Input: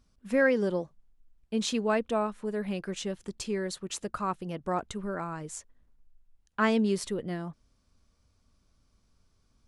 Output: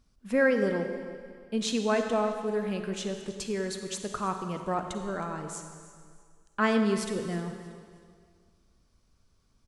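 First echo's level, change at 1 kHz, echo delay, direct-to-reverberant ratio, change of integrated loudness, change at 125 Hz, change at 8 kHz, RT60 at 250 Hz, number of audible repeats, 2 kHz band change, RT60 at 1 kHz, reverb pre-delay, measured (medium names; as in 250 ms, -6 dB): -17.5 dB, +1.0 dB, 316 ms, 5.5 dB, +0.5 dB, +1.0 dB, +1.0 dB, 1.9 s, 2, +1.0 dB, 1.9 s, 33 ms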